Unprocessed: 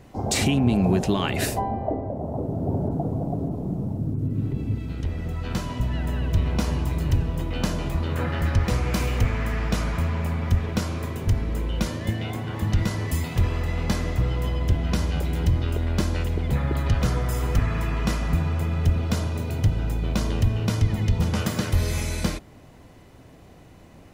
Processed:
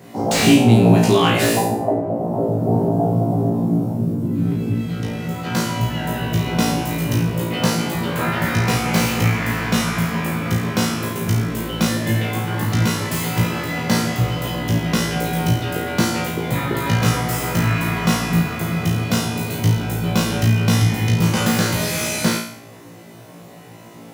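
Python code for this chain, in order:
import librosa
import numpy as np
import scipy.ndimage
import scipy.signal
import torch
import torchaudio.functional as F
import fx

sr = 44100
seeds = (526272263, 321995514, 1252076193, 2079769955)

y = scipy.signal.sosfilt(scipy.signal.butter(4, 120.0, 'highpass', fs=sr, output='sos'), x)
y = fx.high_shelf(y, sr, hz=11000.0, db=10.0)
y = fx.room_flutter(y, sr, wall_m=3.0, rt60_s=0.57)
y = fx.slew_limit(y, sr, full_power_hz=270.0)
y = y * 10.0 ** (5.5 / 20.0)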